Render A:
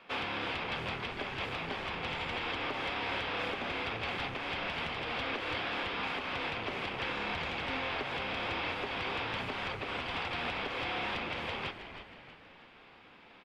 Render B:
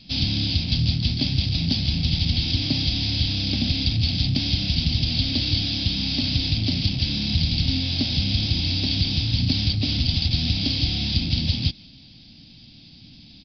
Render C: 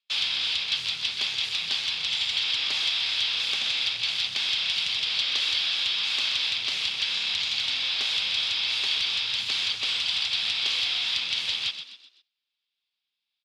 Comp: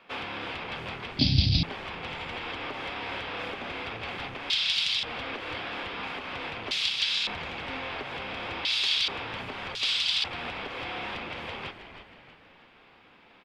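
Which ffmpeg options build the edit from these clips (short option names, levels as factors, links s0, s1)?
-filter_complex "[2:a]asplit=4[s0][s1][s2][s3];[0:a]asplit=6[s4][s5][s6][s7][s8][s9];[s4]atrim=end=1.192[s10];[1:a]atrim=start=1.188:end=1.632[s11];[s5]atrim=start=1.628:end=4.502[s12];[s0]atrim=start=4.498:end=5.032[s13];[s6]atrim=start=5.028:end=6.712[s14];[s1]atrim=start=6.708:end=7.272[s15];[s7]atrim=start=7.268:end=8.652[s16];[s2]atrim=start=8.648:end=9.082[s17];[s8]atrim=start=9.078:end=9.752[s18];[s3]atrim=start=9.748:end=10.242[s19];[s9]atrim=start=10.238[s20];[s10][s11]acrossfade=d=0.004:c1=hsin:c2=hsin[s21];[s21][s12]acrossfade=d=0.004:c1=hsin:c2=hsin[s22];[s22][s13]acrossfade=d=0.004:c1=hsin:c2=hsin[s23];[s23][s14]acrossfade=d=0.004:c1=hsin:c2=hsin[s24];[s24][s15]acrossfade=d=0.004:c1=hsin:c2=hsin[s25];[s25][s16]acrossfade=d=0.004:c1=hsin:c2=hsin[s26];[s26][s17]acrossfade=d=0.004:c1=hsin:c2=hsin[s27];[s27][s18]acrossfade=d=0.004:c1=hsin:c2=hsin[s28];[s28][s19]acrossfade=d=0.004:c1=hsin:c2=hsin[s29];[s29][s20]acrossfade=d=0.004:c1=hsin:c2=hsin"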